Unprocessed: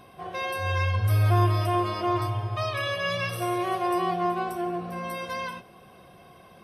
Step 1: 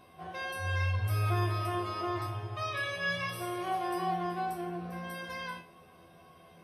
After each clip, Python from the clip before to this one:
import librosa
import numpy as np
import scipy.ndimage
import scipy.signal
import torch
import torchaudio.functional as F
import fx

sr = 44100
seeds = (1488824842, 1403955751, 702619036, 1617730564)

y = fx.comb_fb(x, sr, f0_hz=84.0, decay_s=0.32, harmonics='all', damping=0.0, mix_pct=90)
y = F.gain(torch.from_numpy(y), 3.0).numpy()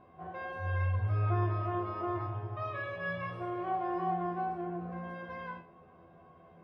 y = scipy.signal.sosfilt(scipy.signal.butter(2, 1400.0, 'lowpass', fs=sr, output='sos'), x)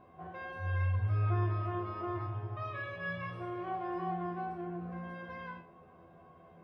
y = fx.dynamic_eq(x, sr, hz=660.0, q=0.77, threshold_db=-46.0, ratio=4.0, max_db=-5)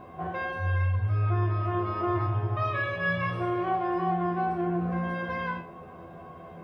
y = fx.rider(x, sr, range_db=4, speed_s=0.5)
y = F.gain(torch.from_numpy(y), 8.5).numpy()